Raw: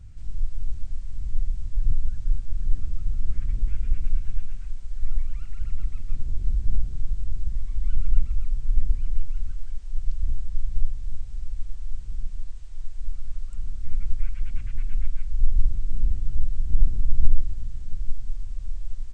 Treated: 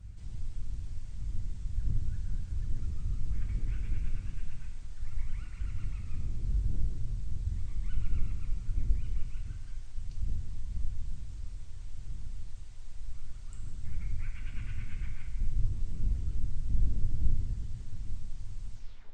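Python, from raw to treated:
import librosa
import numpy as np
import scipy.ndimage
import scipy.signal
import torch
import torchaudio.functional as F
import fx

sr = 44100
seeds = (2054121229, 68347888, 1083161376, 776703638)

y = fx.tape_stop_end(x, sr, length_s=0.43)
y = fx.hpss(y, sr, part='harmonic', gain_db=-14)
y = fx.rev_gated(y, sr, seeds[0], gate_ms=420, shape='falling', drr_db=1.0)
y = F.gain(torch.from_numpy(y), 1.0).numpy()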